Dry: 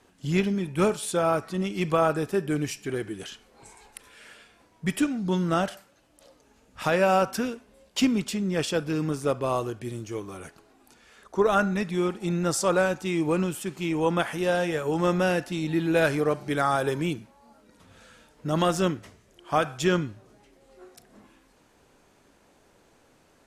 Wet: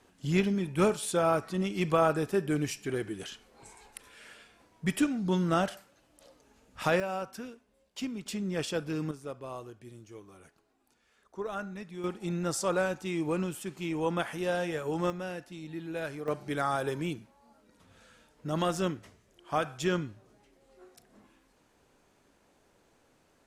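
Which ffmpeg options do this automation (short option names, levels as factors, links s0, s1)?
-af "asetnsamples=n=441:p=0,asendcmd='7 volume volume -13.5dB;8.26 volume volume -6dB;9.11 volume volume -14.5dB;12.04 volume volume -6dB;15.1 volume volume -14dB;16.28 volume volume -6dB',volume=0.75"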